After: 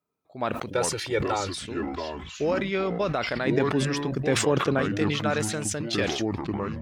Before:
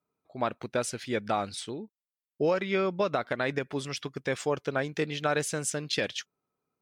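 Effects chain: 0.7–1.58 comb 2.2 ms, depth 84%; 3.47–4.79 bell 220 Hz +9 dB 2.4 oct; echoes that change speed 0.242 s, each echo -5 st, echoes 3, each echo -6 dB; sustainer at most 44 dB/s

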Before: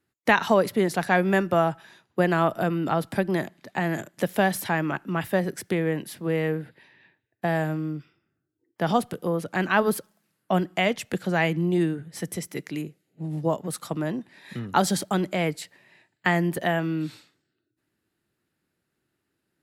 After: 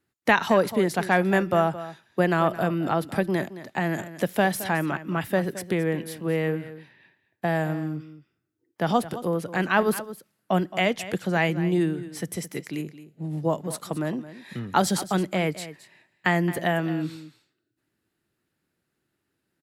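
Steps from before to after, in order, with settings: echo 0.219 s -14.5 dB

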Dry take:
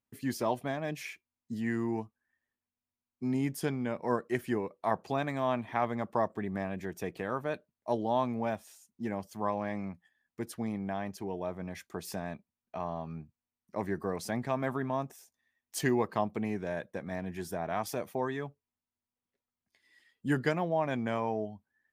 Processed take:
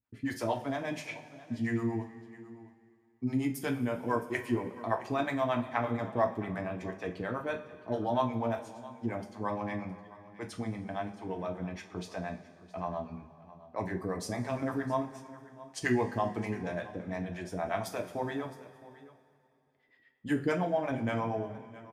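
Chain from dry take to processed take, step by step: low-pass opened by the level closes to 2300 Hz, open at -29.5 dBFS; harmonic tremolo 8.6 Hz, depth 100%, crossover 470 Hz; echo 0.665 s -18.5 dB; two-slope reverb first 0.26 s, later 2.7 s, from -19 dB, DRR 2.5 dB; gain +3 dB

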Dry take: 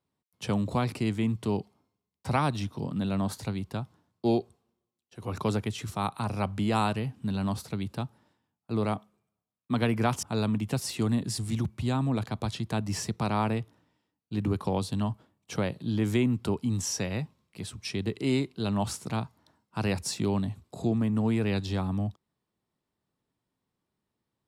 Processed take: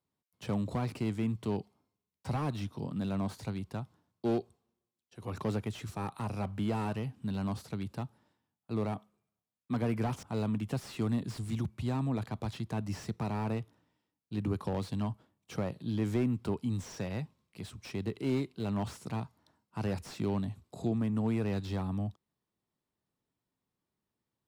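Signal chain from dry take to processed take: slew limiter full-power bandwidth 37 Hz; gain -4.5 dB

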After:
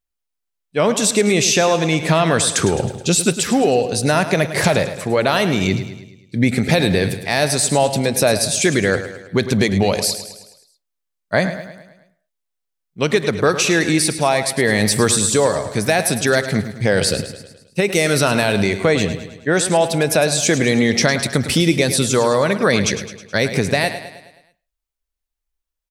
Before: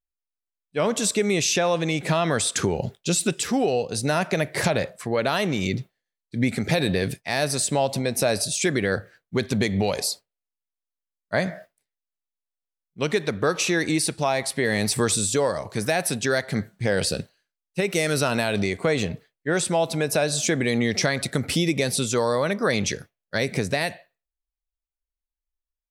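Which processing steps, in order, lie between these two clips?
feedback echo 0.106 s, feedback 52%, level -11.5 dB; gain +6.5 dB

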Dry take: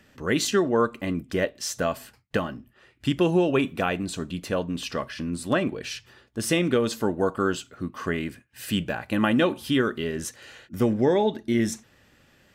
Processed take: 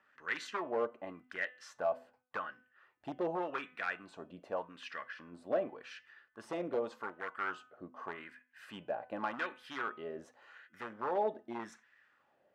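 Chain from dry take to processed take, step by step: wavefolder -16.5 dBFS; wah 0.86 Hz 620–1800 Hz, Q 3; de-hum 251.5 Hz, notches 13; gain -2 dB

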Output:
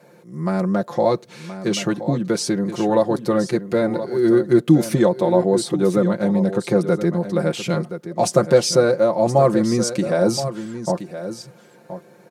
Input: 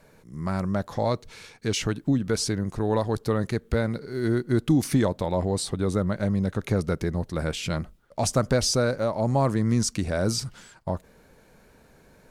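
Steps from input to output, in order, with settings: HPF 120 Hz 24 dB/oct; bell 460 Hz +8 dB 2 oct; comb 5.7 ms, depth 81%; echo 1.023 s -11.5 dB

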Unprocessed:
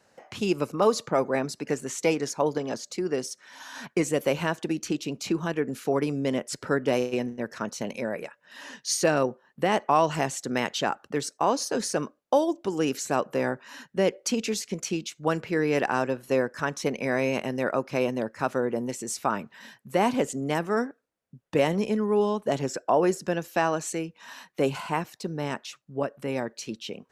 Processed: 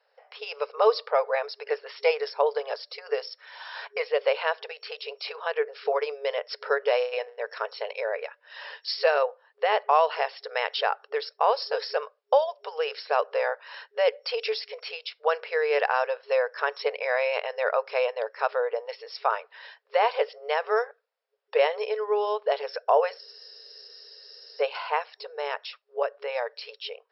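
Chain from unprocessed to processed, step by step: FFT band-pass 410–5500 Hz; AGC gain up to 9 dB; spectral freeze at 23.21, 1.40 s; gain -6 dB

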